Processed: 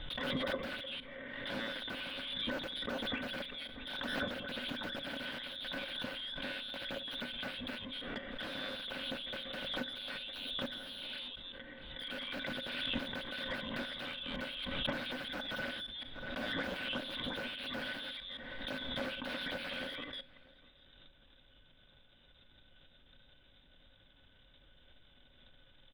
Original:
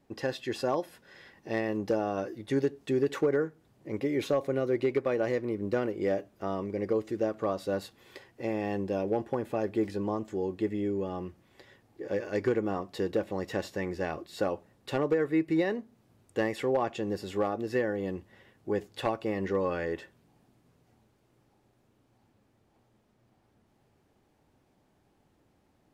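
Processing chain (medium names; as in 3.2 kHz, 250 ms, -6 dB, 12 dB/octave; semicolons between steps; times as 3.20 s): chunks repeated in reverse 167 ms, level -9 dB; high-pass 95 Hz 12 dB/octave; frequency inversion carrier 3.8 kHz; transient shaper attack +8 dB, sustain -6 dB; wavefolder -36.5 dBFS; small resonant body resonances 250/540/1500 Hz, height 17 dB, ringing for 55 ms; added noise brown -72 dBFS; distance through air 370 m; echo from a far wall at 110 m, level -21 dB; reverberation RT60 0.55 s, pre-delay 7 ms, DRR 16.5 dB; swell ahead of each attack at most 30 dB/s; trim +6 dB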